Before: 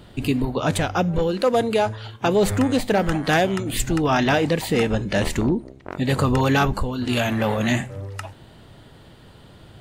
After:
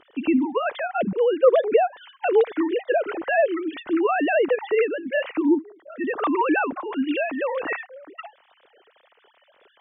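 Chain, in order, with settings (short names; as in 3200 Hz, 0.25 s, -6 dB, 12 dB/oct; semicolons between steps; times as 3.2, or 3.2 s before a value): sine-wave speech; gain -1.5 dB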